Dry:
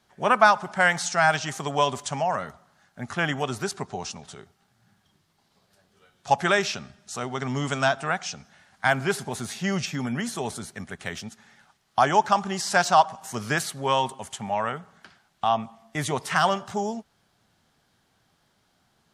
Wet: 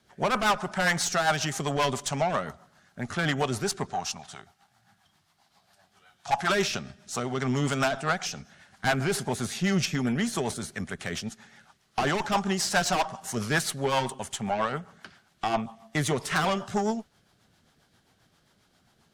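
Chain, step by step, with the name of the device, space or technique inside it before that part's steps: overdriven rotary cabinet (valve stage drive 23 dB, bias 0.35; rotary cabinet horn 7.5 Hz); 3.93–6.50 s: resonant low shelf 600 Hz -6.5 dB, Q 3; trim +5.5 dB

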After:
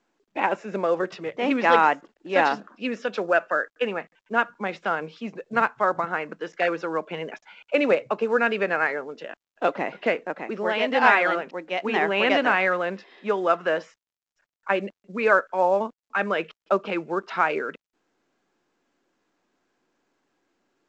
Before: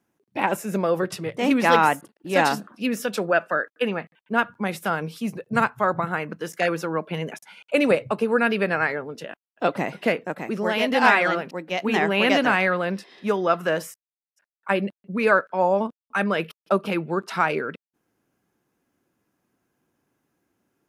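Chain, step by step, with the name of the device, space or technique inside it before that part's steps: telephone (band-pass 300–3200 Hz; µ-law 128 kbps 16 kHz)

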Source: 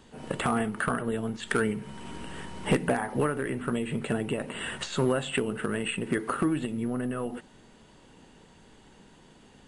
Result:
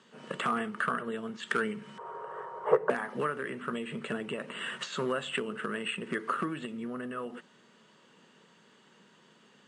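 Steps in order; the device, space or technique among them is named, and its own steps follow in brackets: 1.98–2.90 s: FFT filter 120 Hz 0 dB, 250 Hz -27 dB, 420 Hz +11 dB, 1.1 kHz +10 dB, 2.7 kHz -19 dB; television speaker (cabinet simulation 170–7800 Hz, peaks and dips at 290 Hz -9 dB, 780 Hz -7 dB, 1.2 kHz +6 dB, 1.7 kHz +3 dB, 3 kHz +3 dB); trim -4 dB

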